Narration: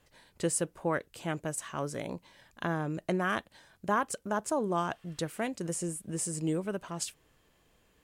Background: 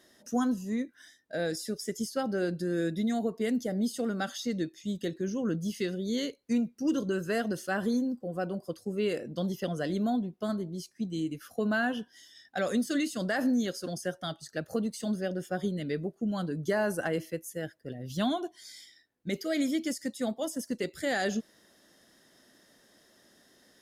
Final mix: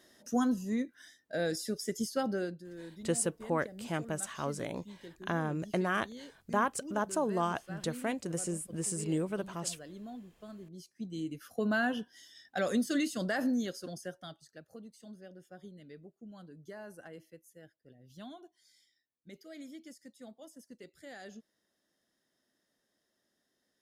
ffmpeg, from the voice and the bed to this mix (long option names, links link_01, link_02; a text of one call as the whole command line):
ffmpeg -i stem1.wav -i stem2.wav -filter_complex "[0:a]adelay=2650,volume=-1dB[link_01];[1:a]volume=14dB,afade=type=out:start_time=2.27:duration=0.34:silence=0.16788,afade=type=in:start_time=10.51:duration=1.24:silence=0.177828,afade=type=out:start_time=13.1:duration=1.54:silence=0.141254[link_02];[link_01][link_02]amix=inputs=2:normalize=0" out.wav